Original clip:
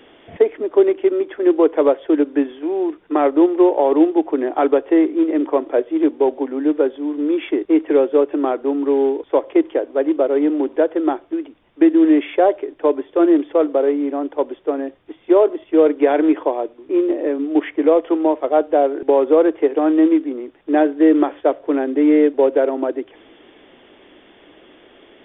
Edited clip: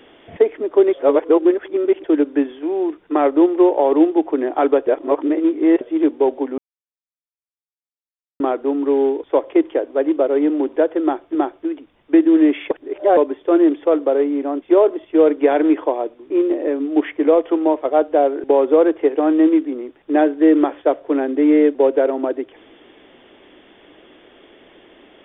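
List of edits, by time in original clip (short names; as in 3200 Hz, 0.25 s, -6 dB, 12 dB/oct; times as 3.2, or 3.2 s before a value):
0.93–2.04 reverse
4.87–5.81 reverse
6.58–8.4 mute
11.03–11.35 loop, 2 plays
12.39–12.85 reverse
14.3–15.21 cut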